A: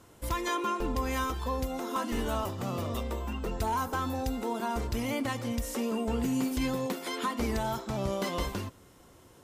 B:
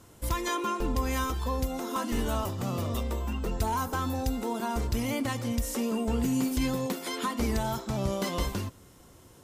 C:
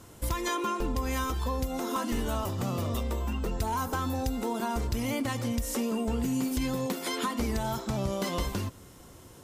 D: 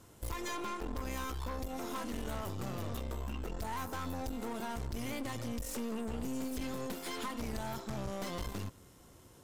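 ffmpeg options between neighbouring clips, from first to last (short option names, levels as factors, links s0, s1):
-af "bass=f=250:g=4,treble=f=4000:g=4"
-af "acompressor=threshold=0.0251:ratio=2.5,volume=1.5"
-af "aeval=exprs='(tanh(39.8*val(0)+0.75)-tanh(0.75))/39.8':c=same,volume=0.708"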